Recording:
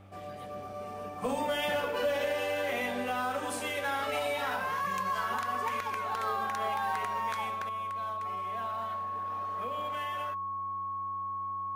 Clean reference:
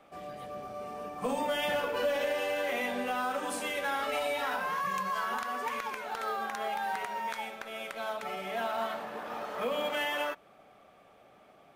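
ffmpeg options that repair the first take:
-af "bandreject=f=97.5:t=h:w=4,bandreject=f=195:t=h:w=4,bandreject=f=292.5:t=h:w=4,bandreject=f=390:t=h:w=4,bandreject=f=1100:w=30,asetnsamples=n=441:p=0,asendcmd='7.69 volume volume 9dB',volume=1"

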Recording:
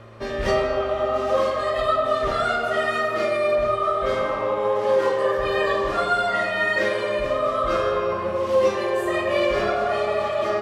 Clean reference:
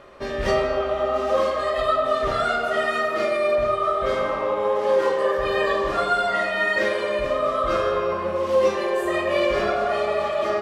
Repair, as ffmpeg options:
-af "bandreject=f=112:t=h:w=4,bandreject=f=224:t=h:w=4,bandreject=f=336:t=h:w=4,bandreject=f=448:t=h:w=4,bandreject=f=560:t=h:w=4"

